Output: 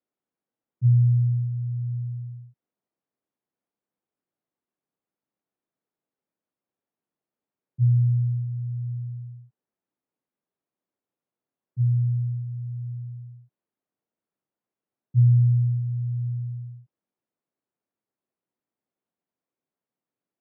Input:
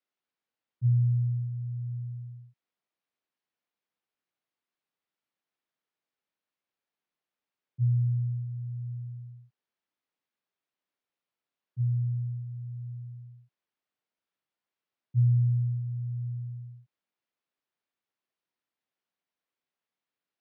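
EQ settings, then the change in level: band-pass filter 220 Hz, Q 0.52; +7.5 dB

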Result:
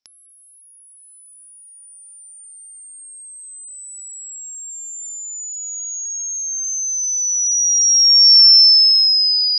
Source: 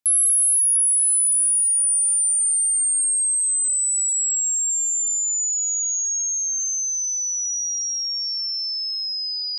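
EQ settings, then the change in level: resonant low-pass 5.4 kHz, resonance Q 15; distance through air 99 m; 0.0 dB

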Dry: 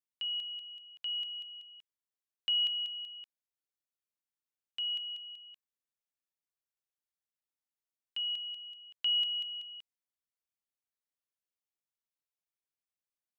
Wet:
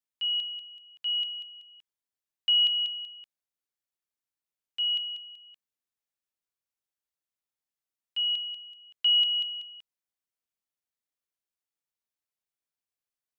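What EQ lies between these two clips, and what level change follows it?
dynamic bell 3.4 kHz, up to +8 dB, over -44 dBFS, Q 0.94; 0.0 dB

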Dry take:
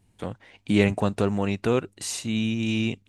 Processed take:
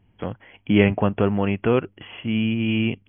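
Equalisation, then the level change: brick-wall FIR low-pass 3.4 kHz; +3.5 dB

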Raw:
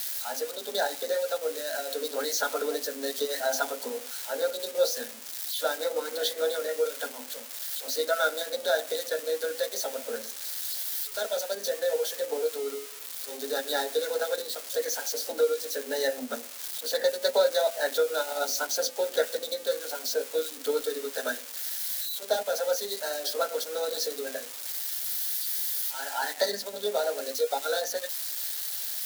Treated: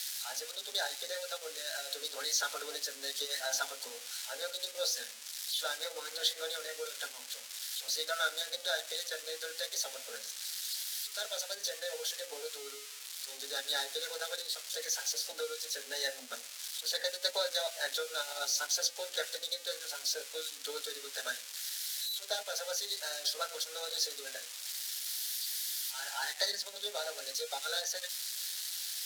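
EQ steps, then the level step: band-pass filter 4.4 kHz, Q 0.59; 0.0 dB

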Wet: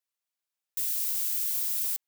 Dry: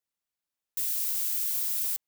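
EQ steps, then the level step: high-pass 750 Hz 6 dB/octave; 0.0 dB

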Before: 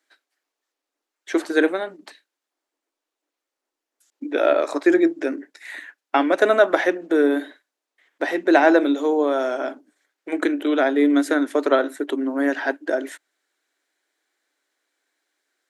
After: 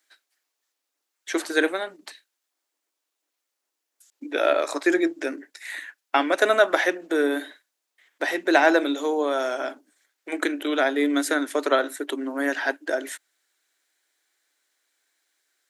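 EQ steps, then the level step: tilt EQ +2.5 dB/octave; -1.5 dB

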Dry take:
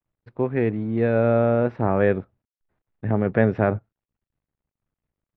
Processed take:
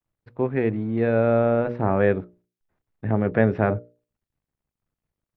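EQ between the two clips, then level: hum notches 60/120/180/240/300/360/420/480/540/600 Hz; 0.0 dB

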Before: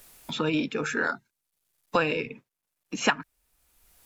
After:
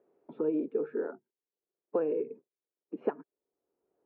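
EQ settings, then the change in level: ladder band-pass 450 Hz, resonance 60%; distance through air 270 m; bass shelf 480 Hz +11 dB; 0.0 dB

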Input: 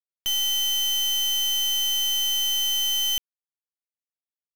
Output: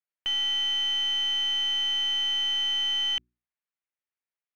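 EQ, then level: resonant low-pass 2.2 kHz, resonance Q 1.6; bass shelf 280 Hz -8 dB; hum notches 60/120/180/240/300/360 Hz; +1.0 dB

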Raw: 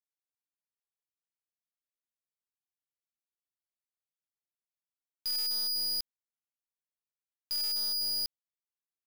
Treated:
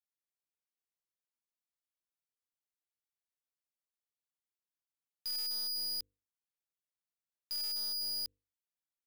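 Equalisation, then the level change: hum notches 50/100/150/200/250/300/350/400/450/500 Hz; -5.0 dB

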